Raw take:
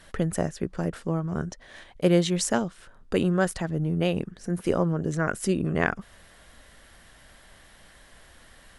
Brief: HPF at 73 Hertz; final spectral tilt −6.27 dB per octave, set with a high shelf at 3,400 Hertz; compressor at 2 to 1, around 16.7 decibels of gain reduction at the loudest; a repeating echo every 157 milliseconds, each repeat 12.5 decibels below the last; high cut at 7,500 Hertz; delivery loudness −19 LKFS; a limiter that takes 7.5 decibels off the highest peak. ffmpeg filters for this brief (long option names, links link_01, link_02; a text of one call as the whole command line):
ffmpeg -i in.wav -af "highpass=73,lowpass=7500,highshelf=frequency=3400:gain=-4.5,acompressor=threshold=-48dB:ratio=2,alimiter=level_in=7dB:limit=-24dB:level=0:latency=1,volume=-7dB,aecho=1:1:157|314|471:0.237|0.0569|0.0137,volume=24dB" out.wav